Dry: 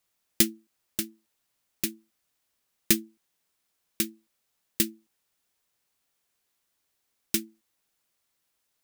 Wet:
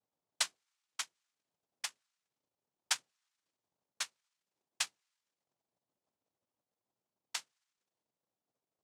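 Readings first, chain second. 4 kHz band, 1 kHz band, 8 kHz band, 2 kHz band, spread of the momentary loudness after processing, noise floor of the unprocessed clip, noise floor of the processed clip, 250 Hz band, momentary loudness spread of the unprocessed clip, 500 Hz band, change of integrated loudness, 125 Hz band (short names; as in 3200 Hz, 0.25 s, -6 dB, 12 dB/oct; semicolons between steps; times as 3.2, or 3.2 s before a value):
-5.0 dB, +6.0 dB, -8.5 dB, -4.0 dB, 7 LU, -78 dBFS, under -85 dBFS, under -40 dB, 9 LU, -20.0 dB, -11.0 dB, under -30 dB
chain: auto-wah 670–4500 Hz, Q 13, up, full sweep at -36 dBFS; noise vocoder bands 2; gain +7.5 dB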